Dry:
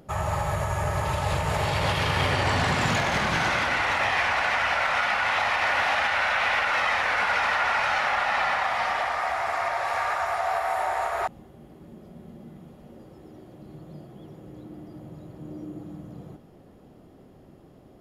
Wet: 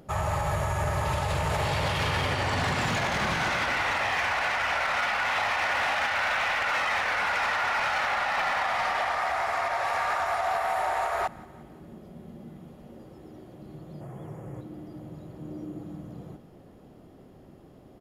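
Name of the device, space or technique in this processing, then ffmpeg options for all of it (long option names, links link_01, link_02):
limiter into clipper: -filter_complex "[0:a]asettb=1/sr,asplit=3[link_01][link_02][link_03];[link_01]atrim=end=14.014[link_04];[link_02]atrim=start=14.01:end=14.61,asetpts=PTS-STARTPTS,afade=type=in:duration=0.004:curve=qsin,afade=type=out:start_time=0.596:duration=0.004:curve=qsin,equalizer=frequency=125:width_type=o:width=1:gain=9,equalizer=frequency=250:width_type=o:width=1:gain=-4,equalizer=frequency=500:width_type=o:width=1:gain=4,equalizer=frequency=1000:width_type=o:width=1:gain=7,equalizer=frequency=2000:width_type=o:width=1:gain=6,equalizer=frequency=4000:width_type=o:width=1:gain=-11,equalizer=frequency=8000:width_type=o:width=1:gain=8[link_05];[link_03]atrim=start=14.606[link_06];[link_04][link_05]acrossfade=duration=0.004:curve1=hsin:curve2=qsin[link_07];[link_07][link_06]acrossfade=duration=0.004:curve1=qsin:curve2=hsin,aecho=1:1:177|354|531|708:0.0794|0.0445|0.0249|0.0139,alimiter=limit=-17.5dB:level=0:latency=1:release=40,asoftclip=type=hard:threshold=-21.5dB"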